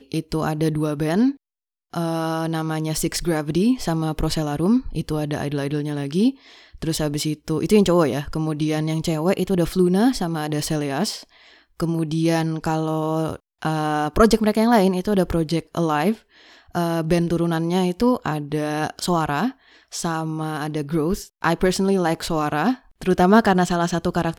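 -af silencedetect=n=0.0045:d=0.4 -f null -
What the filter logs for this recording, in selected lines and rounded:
silence_start: 1.37
silence_end: 1.94 | silence_duration: 0.57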